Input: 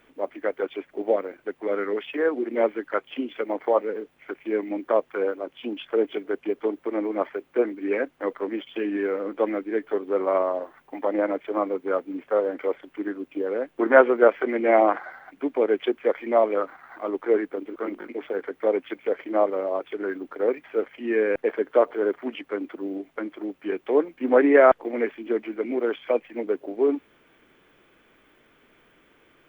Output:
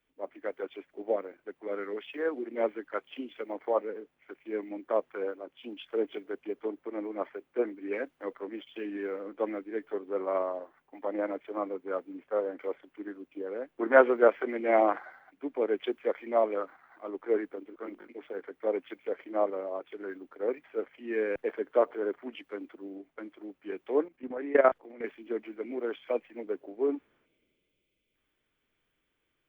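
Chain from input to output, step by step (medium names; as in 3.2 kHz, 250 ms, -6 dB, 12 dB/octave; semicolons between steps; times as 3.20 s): 24.06–25.04 s: level held to a coarse grid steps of 13 dB; 27.26–28.15 s: time-frequency box 650–2000 Hz -12 dB; three bands expanded up and down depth 40%; trim -8 dB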